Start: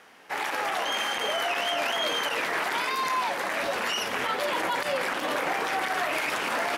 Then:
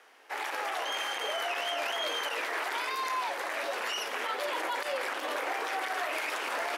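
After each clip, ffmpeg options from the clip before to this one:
-af "highpass=f=320:w=0.5412,highpass=f=320:w=1.3066,volume=0.562"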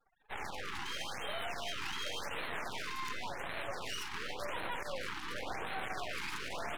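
-af "afftfilt=real='re*gte(hypot(re,im),0.00447)':imag='im*gte(hypot(re,im),0.00447)':win_size=1024:overlap=0.75,aeval=exprs='max(val(0),0)':c=same,afftfilt=real='re*(1-between(b*sr/1024,540*pow(6200/540,0.5+0.5*sin(2*PI*0.91*pts/sr))/1.41,540*pow(6200/540,0.5+0.5*sin(2*PI*0.91*pts/sr))*1.41))':imag='im*(1-between(b*sr/1024,540*pow(6200/540,0.5+0.5*sin(2*PI*0.91*pts/sr))/1.41,540*pow(6200/540,0.5+0.5*sin(2*PI*0.91*pts/sr))*1.41))':win_size=1024:overlap=0.75,volume=0.794"

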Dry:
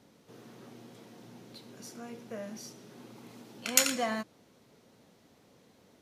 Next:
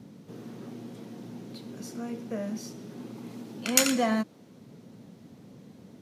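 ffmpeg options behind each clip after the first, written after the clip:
-filter_complex "[0:a]highpass=110,equalizer=f=200:t=o:w=2.5:g=8.5,acrossover=split=210|1500|4800[s0][s1][s2][s3];[s0]acompressor=mode=upward:threshold=0.00631:ratio=2.5[s4];[s4][s1][s2][s3]amix=inputs=4:normalize=0,volume=1.26"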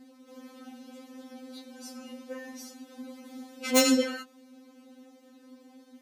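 -filter_complex "[0:a]highpass=f=270:w=0.5412,highpass=f=270:w=1.3066,acrossover=split=1600[s0][s1];[s1]aeval=exprs='0.2*(abs(mod(val(0)/0.2+3,4)-2)-1)':c=same[s2];[s0][s2]amix=inputs=2:normalize=0,afftfilt=real='re*3.46*eq(mod(b,12),0)':imag='im*3.46*eq(mod(b,12),0)':win_size=2048:overlap=0.75,volume=1.33"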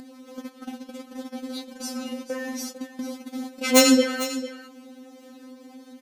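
-filter_complex "[0:a]agate=range=0.158:threshold=0.00562:ratio=16:detection=peak,asplit=2[s0][s1];[s1]acompressor=mode=upward:threshold=0.0447:ratio=2.5,volume=1.06[s2];[s0][s2]amix=inputs=2:normalize=0,aecho=1:1:449:0.211"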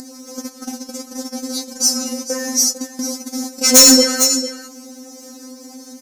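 -af "highshelf=f=4300:t=q:w=3:g=10,asoftclip=type=tanh:threshold=0.316,volume=2.24"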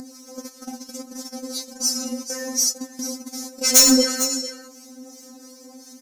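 -filter_complex "[0:a]aphaser=in_gain=1:out_gain=1:delay=2.3:decay=0.28:speed=0.98:type=triangular,acrossover=split=1400[s0][s1];[s0]aeval=exprs='val(0)*(1-0.5/2+0.5/2*cos(2*PI*2.8*n/s))':c=same[s2];[s1]aeval=exprs='val(0)*(1-0.5/2-0.5/2*cos(2*PI*2.8*n/s))':c=same[s3];[s2][s3]amix=inputs=2:normalize=0,volume=0.631"

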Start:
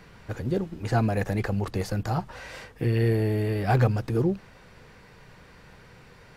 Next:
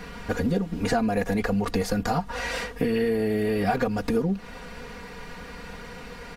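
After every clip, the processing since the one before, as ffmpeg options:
-af "aecho=1:1:4.2:0.93,acompressor=threshold=0.0316:ratio=6,volume=2.66"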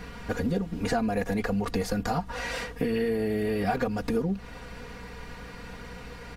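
-af "aeval=exprs='val(0)+0.00708*(sin(2*PI*60*n/s)+sin(2*PI*2*60*n/s)/2+sin(2*PI*3*60*n/s)/3+sin(2*PI*4*60*n/s)/4+sin(2*PI*5*60*n/s)/5)':c=same,volume=0.708"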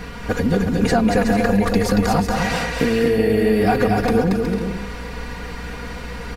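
-af "aecho=1:1:230|368|450.8|500.5|530.3:0.631|0.398|0.251|0.158|0.1,volume=2.66"

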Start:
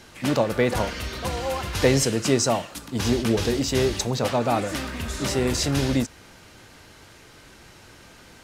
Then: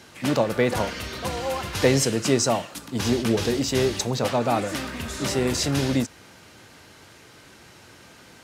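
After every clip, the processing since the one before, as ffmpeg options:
-af "highpass=85"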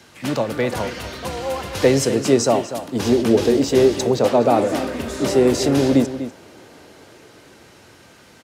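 -filter_complex "[0:a]acrossover=split=280|660|6500[s0][s1][s2][s3];[s1]dynaudnorm=f=420:g=9:m=4.47[s4];[s0][s4][s2][s3]amix=inputs=4:normalize=0,asplit=2[s5][s6];[s6]adelay=244.9,volume=0.282,highshelf=f=4000:g=-5.51[s7];[s5][s7]amix=inputs=2:normalize=0"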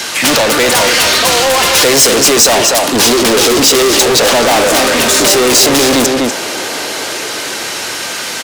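-filter_complex "[0:a]asplit=2[s0][s1];[s1]highpass=f=720:p=1,volume=63.1,asoftclip=type=tanh:threshold=0.75[s2];[s0][s2]amix=inputs=2:normalize=0,lowpass=f=5600:p=1,volume=0.501,highshelf=f=3900:g=12,volume=0.794"

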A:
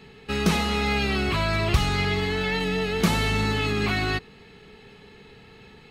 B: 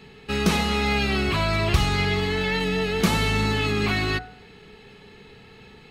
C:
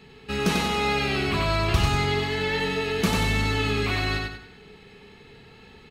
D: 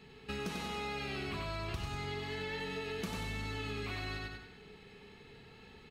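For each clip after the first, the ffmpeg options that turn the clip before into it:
-af "bandreject=f=56.82:t=h:w=4,bandreject=f=113.64:t=h:w=4,bandreject=f=170.46:t=h:w=4,bandreject=f=227.28:t=h:w=4,bandreject=f=284.1:t=h:w=4,bandreject=f=340.92:t=h:w=4,bandreject=f=397.74:t=h:w=4,bandreject=f=454.56:t=h:w=4,bandreject=f=511.38:t=h:w=4,bandreject=f=568.2:t=h:w=4,bandreject=f=625.02:t=h:w=4,bandreject=f=681.84:t=h:w=4,bandreject=f=738.66:t=h:w=4,bandreject=f=795.48:t=h:w=4,bandreject=f=852.3:t=h:w=4,bandreject=f=909.12:t=h:w=4,bandreject=f=965.94:t=h:w=4,bandreject=f=1022.76:t=h:w=4,bandreject=f=1079.58:t=h:w=4,bandreject=f=1136.4:t=h:w=4,bandreject=f=1193.22:t=h:w=4,bandreject=f=1250.04:t=h:w=4,bandreject=f=1306.86:t=h:w=4,bandreject=f=1363.68:t=h:w=4,bandreject=f=1420.5:t=h:w=4,bandreject=f=1477.32:t=h:w=4,bandreject=f=1534.14:t=h:w=4,bandreject=f=1590.96:t=h:w=4,bandreject=f=1647.78:t=h:w=4,bandreject=f=1704.6:t=h:w=4,bandreject=f=1761.42:t=h:w=4,bandreject=f=1818.24:t=h:w=4,bandreject=f=1875.06:t=h:w=4,bandreject=f=1931.88:t=h:w=4,bandreject=f=1988.7:t=h:w=4,bandreject=f=2045.52:t=h:w=4,bandreject=f=2102.34:t=h:w=4,bandreject=f=2159.16:t=h:w=4,volume=1.19"
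-af "aecho=1:1:94|188|282|376|470:0.668|0.247|0.0915|0.0339|0.0125,volume=0.708"
-af "acompressor=threshold=0.0316:ratio=6,volume=0.473"

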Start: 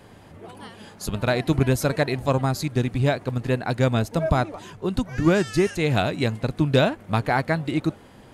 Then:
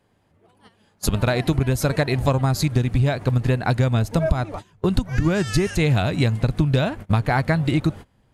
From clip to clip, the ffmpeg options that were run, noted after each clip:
-af "agate=range=0.0562:threshold=0.0178:ratio=16:detection=peak,asubboost=boost=2.5:cutoff=170,acompressor=threshold=0.0631:ratio=10,volume=2.66"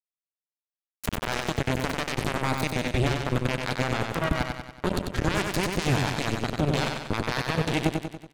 -filter_complex "[0:a]alimiter=limit=0.168:level=0:latency=1:release=33,acrusher=bits=2:mix=0:aa=0.5,asplit=2[s0][s1];[s1]aecho=0:1:94|188|282|376|470|564|658:0.596|0.316|0.167|0.0887|0.047|0.0249|0.0132[s2];[s0][s2]amix=inputs=2:normalize=0,volume=1.33"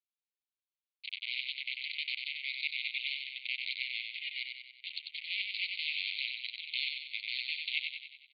-af "asuperpass=centerf=3100:order=20:qfactor=1.3"

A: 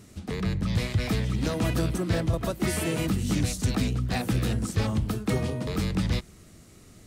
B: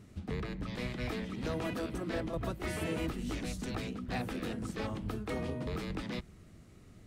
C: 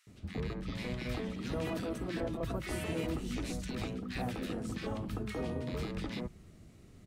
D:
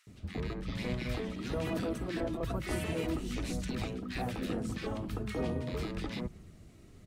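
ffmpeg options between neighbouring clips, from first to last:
-af "bass=f=250:g=3,treble=f=4000:g=-9,afftfilt=real='re*lt(hypot(re,im),0.398)':imag='im*lt(hypot(re,im),0.398)':win_size=1024:overlap=0.75,volume=0.501"
-filter_complex "[0:a]acrossover=split=1400[s0][s1];[s0]adelay=70[s2];[s2][s1]amix=inputs=2:normalize=0"
-af "aphaser=in_gain=1:out_gain=1:delay=3.2:decay=0.24:speed=1.1:type=sinusoidal,volume=1.12"

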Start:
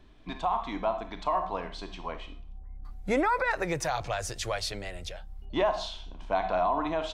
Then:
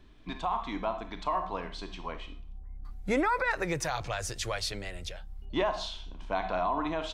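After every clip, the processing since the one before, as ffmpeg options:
-af "equalizer=f=690:w=1.7:g=-4.5"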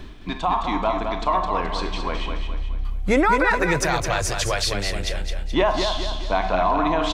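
-af "areverse,acompressor=mode=upward:threshold=0.0282:ratio=2.5,areverse,aecho=1:1:213|426|639|852|1065:0.501|0.216|0.0927|0.0398|0.0171,volume=2.82"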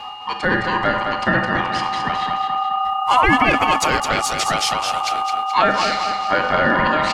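-af "aeval=exprs='val(0)+0.0158*sin(2*PI*2100*n/s)':c=same,afreqshift=-260,aeval=exprs='val(0)*sin(2*PI*1000*n/s)':c=same,volume=2"

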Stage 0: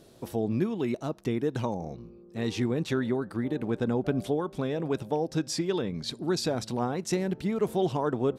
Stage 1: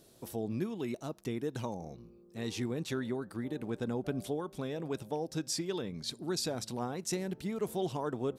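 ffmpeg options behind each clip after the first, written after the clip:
-af "highshelf=f=5400:g=11,volume=0.422"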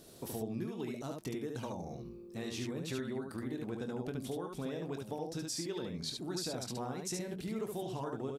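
-af "acompressor=threshold=0.00631:ratio=3,aecho=1:1:23|72:0.335|0.668,volume=1.58"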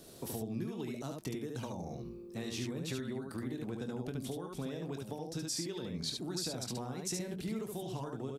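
-filter_complex "[0:a]acrossover=split=230|3000[s0][s1][s2];[s1]acompressor=threshold=0.00794:ratio=6[s3];[s0][s3][s2]amix=inputs=3:normalize=0,volume=1.26"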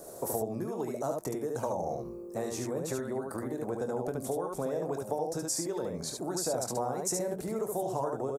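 -af "firequalizer=gain_entry='entry(230,0);entry(560,15);entry(3000,-11);entry(6800,8)':delay=0.05:min_phase=1"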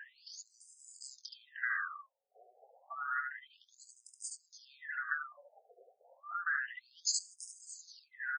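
-filter_complex "[0:a]afftfilt=real='real(if(lt(b,960),b+48*(1-2*mod(floor(b/48),2)),b),0)':imag='imag(if(lt(b,960),b+48*(1-2*mod(floor(b/48),2)),b),0)':win_size=2048:overlap=0.75,acrossover=split=160|3000[s0][s1][s2];[s1]acompressor=threshold=0.00355:ratio=1.5[s3];[s0][s3][s2]amix=inputs=3:normalize=0,afftfilt=real='re*between(b*sr/1024,540*pow(6900/540,0.5+0.5*sin(2*PI*0.3*pts/sr))/1.41,540*pow(6900/540,0.5+0.5*sin(2*PI*0.3*pts/sr))*1.41)':imag='im*between(b*sr/1024,540*pow(6900/540,0.5+0.5*sin(2*PI*0.3*pts/sr))/1.41,540*pow(6900/540,0.5+0.5*sin(2*PI*0.3*pts/sr))*1.41)':win_size=1024:overlap=0.75,volume=1.58"

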